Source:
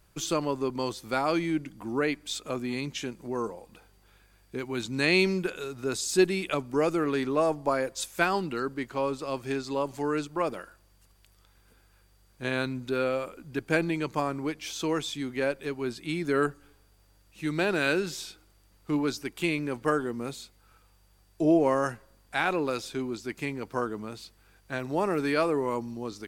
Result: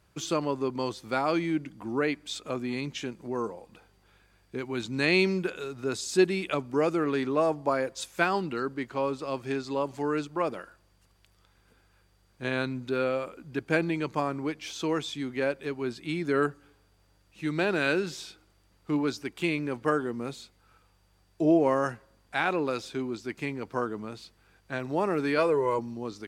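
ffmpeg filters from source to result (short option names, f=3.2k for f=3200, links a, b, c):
-filter_complex "[0:a]asettb=1/sr,asplit=3[a][b][c];[a]atrim=end=25.384[d];[b]atrim=start=25.38:end=25.79,asetpts=PTS-STARTPTS,afade=t=in:d=0.004:c=qsin,afade=t=out:st=0.406:d=0.004:c=qsin,aecho=1:1:2:0.65,atrim=end_sample=18081[e];[c]atrim=start=25.786[f];[d][e]acrossfade=d=0.004:c1=hsin:c2=qsin[g];[g][f]acrossfade=d=0.004:c1=qsin:c2=hsin,highpass=58,highshelf=f=8.8k:g=-11.5"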